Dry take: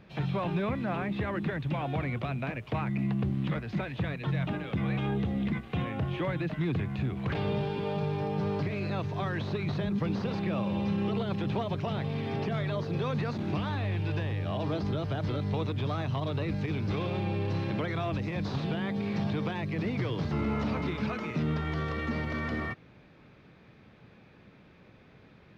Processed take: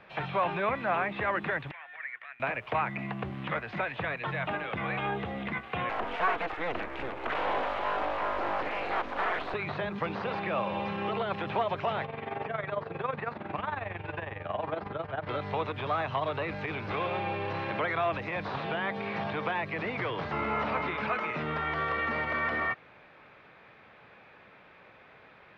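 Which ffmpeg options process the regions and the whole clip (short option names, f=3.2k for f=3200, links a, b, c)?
-filter_complex "[0:a]asettb=1/sr,asplit=3[a][b][c];[a]atrim=end=1.714[d];[b]atrim=start=1.71:end=2.4,asetpts=PTS-STARTPTS,afade=t=in:d=0.004:c=qsin,afade=t=out:st=0.686:d=0.004:c=qsin,bandpass=f=1.8k:t=q:w=8.3,aemphasis=mode=production:type=75fm[e];[c]atrim=start=2.396[f];[d][e]acrossfade=d=0.004:c1=hsin:c2=qsin[g];[g][f]acrossfade=d=0.004:c1=qsin:c2=hsin,asettb=1/sr,asplit=3[h][i][j];[h]atrim=end=5.894[k];[i]atrim=start=5.89:end=9.54,asetpts=PTS-STARTPTS,afade=t=in:d=0.004:c=qsin,afade=t=out:st=3.646:d=0.004:c=qsin,equalizer=f=550:w=5.2:g=7.5,aeval=exprs='abs(val(0))':c=same[l];[j]atrim=start=9.536[m];[k][l]acrossfade=d=0.004:c1=hsin:c2=qsin[n];[n][m]acrossfade=d=0.004:c1=qsin:c2=hsin,asettb=1/sr,asplit=3[o][p][q];[o]atrim=end=12.054[r];[p]atrim=start=12.05:end=15.29,asetpts=PTS-STARTPTS,afade=t=in:d=0.004:c=qsin,afade=t=out:st=3.236:d=0.004:c=qsin,lowpass=2.4k,tremolo=f=22:d=0.75[s];[q]atrim=start=15.286[t];[r][s]acrossfade=d=0.004:c1=hsin:c2=qsin[u];[u][t]acrossfade=d=0.004:c1=qsin:c2=hsin,acrossover=split=3400[v][w];[w]acompressor=threshold=-55dB:ratio=4:attack=1:release=60[x];[v][x]amix=inputs=2:normalize=0,acrossover=split=540 3100:gain=0.126 1 0.158[y][z][aa];[y][z][aa]amix=inputs=3:normalize=0,volume=8.5dB"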